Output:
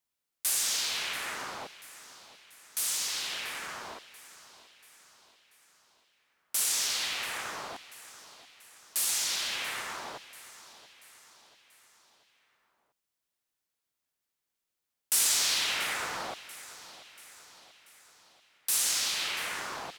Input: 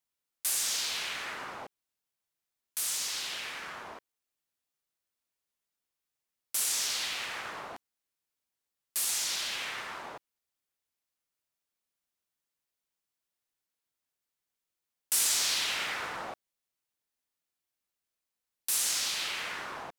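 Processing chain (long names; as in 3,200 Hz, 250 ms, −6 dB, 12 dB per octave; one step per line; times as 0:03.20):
repeating echo 686 ms, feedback 51%, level −17 dB
level +1.5 dB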